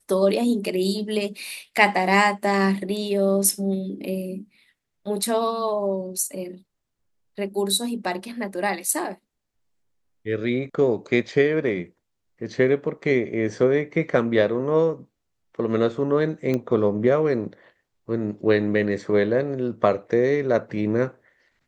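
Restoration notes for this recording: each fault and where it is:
16.54 s: pop -14 dBFS

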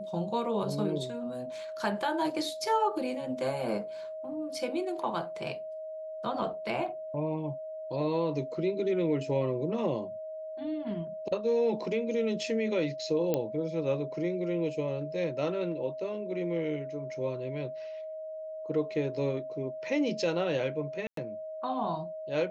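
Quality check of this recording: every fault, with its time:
whine 630 Hz -37 dBFS
13.34 s: pop -15 dBFS
21.07–21.17 s: dropout 103 ms

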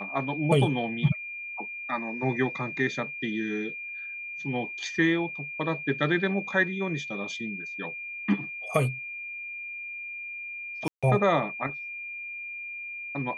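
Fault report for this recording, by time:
whine 2.4 kHz -35 dBFS
10.88–11.03 s: dropout 146 ms

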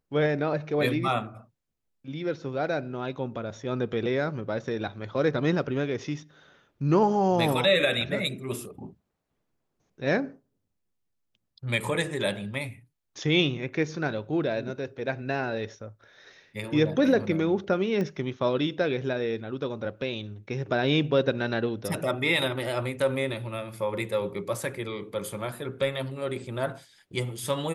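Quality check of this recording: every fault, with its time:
18.01 s: pop -20 dBFS

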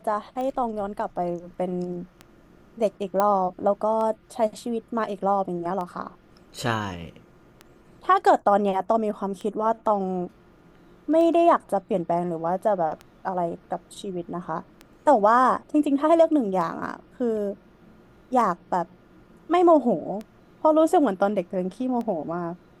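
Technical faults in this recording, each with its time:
tick 33 1/3 rpm -22 dBFS
3.20 s: pop -10 dBFS

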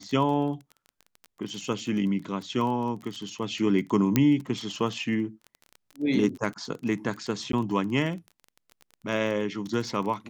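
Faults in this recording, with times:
crackle 22 per s -33 dBFS
4.16 s: pop -7 dBFS
7.52–7.53 s: dropout 13 ms

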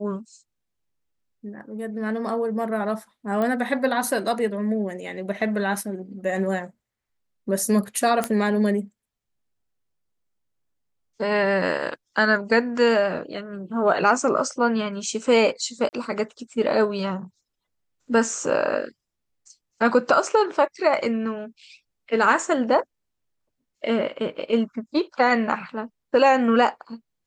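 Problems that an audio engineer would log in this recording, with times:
3.42 s: pop -15 dBFS
8.24 s: pop -9 dBFS
15.89–15.93 s: dropout 39 ms

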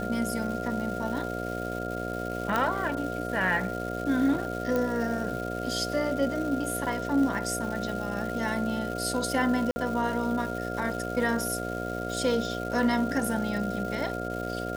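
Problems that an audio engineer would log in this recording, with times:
buzz 60 Hz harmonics 12 -34 dBFS
crackle 590 per s -36 dBFS
whine 1.4 kHz -36 dBFS
2.56 s: pop -13 dBFS
4.76 s: pop -16 dBFS
9.71–9.76 s: dropout 50 ms

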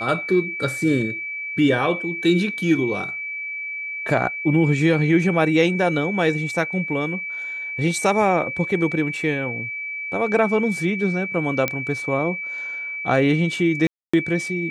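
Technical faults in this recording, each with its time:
whine 2.3 kHz -27 dBFS
11.68 s: pop -7 dBFS
13.87–14.13 s: dropout 265 ms

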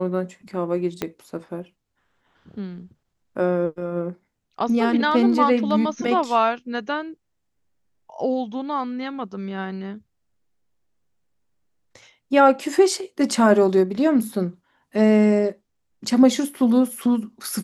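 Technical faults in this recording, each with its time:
1.02 s: pop -10 dBFS

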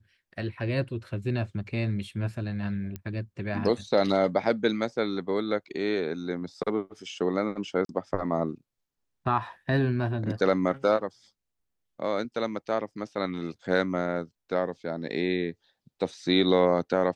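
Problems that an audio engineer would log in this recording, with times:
2.96 s: pop -22 dBFS
7.85–7.89 s: dropout 42 ms

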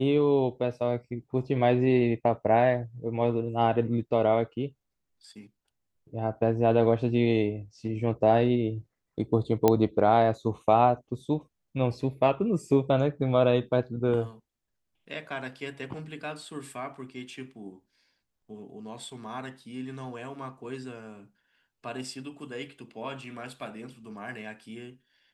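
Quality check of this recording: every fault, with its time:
9.68 s: pop -8 dBFS

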